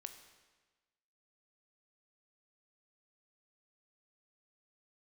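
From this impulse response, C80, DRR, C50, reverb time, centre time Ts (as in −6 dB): 10.5 dB, 7.0 dB, 9.0 dB, 1.3 s, 18 ms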